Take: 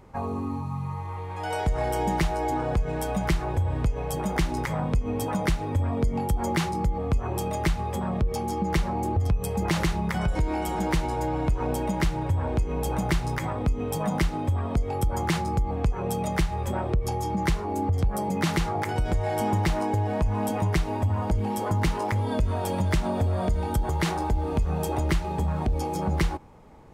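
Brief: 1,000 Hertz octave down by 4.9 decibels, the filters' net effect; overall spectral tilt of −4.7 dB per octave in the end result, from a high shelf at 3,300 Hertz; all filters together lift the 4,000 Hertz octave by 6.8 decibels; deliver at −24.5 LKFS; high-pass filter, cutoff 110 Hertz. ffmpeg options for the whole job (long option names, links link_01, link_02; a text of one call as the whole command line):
ffmpeg -i in.wav -af "highpass=110,equalizer=frequency=1000:width_type=o:gain=-7,highshelf=frequency=3300:gain=5,equalizer=frequency=4000:width_type=o:gain=5.5,volume=5dB" out.wav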